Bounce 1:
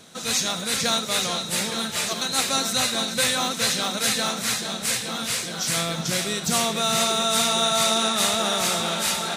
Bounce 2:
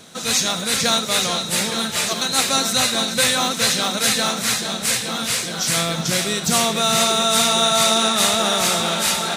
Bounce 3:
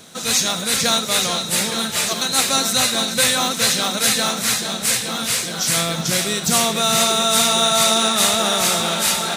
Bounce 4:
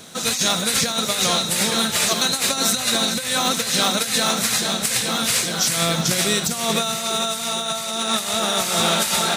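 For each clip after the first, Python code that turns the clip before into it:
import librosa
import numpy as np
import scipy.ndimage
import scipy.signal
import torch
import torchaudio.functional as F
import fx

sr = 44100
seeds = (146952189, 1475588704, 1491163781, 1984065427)

y1 = fx.quant_companded(x, sr, bits=8)
y1 = y1 * librosa.db_to_amplitude(4.5)
y2 = fx.high_shelf(y1, sr, hz=10000.0, db=5.5)
y3 = fx.over_compress(y2, sr, threshold_db=-20.0, ratio=-0.5)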